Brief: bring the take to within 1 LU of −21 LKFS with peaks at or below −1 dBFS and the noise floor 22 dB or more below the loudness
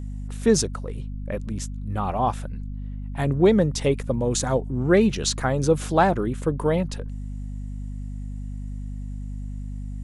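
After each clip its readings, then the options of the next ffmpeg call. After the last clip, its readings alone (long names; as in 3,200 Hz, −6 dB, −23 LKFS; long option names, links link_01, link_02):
mains hum 50 Hz; hum harmonics up to 250 Hz; level of the hum −29 dBFS; integrated loudness −23.5 LKFS; sample peak −6.0 dBFS; target loudness −21.0 LKFS
→ -af "bandreject=frequency=50:width_type=h:width=4,bandreject=frequency=100:width_type=h:width=4,bandreject=frequency=150:width_type=h:width=4,bandreject=frequency=200:width_type=h:width=4,bandreject=frequency=250:width_type=h:width=4"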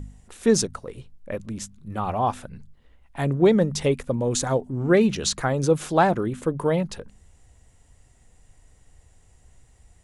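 mains hum none found; integrated loudness −23.5 LKFS; sample peak −6.5 dBFS; target loudness −21.0 LKFS
→ -af "volume=2.5dB"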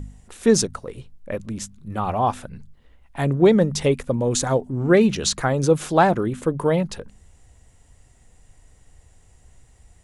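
integrated loudness −21.0 LKFS; sample peak −4.0 dBFS; background noise floor −55 dBFS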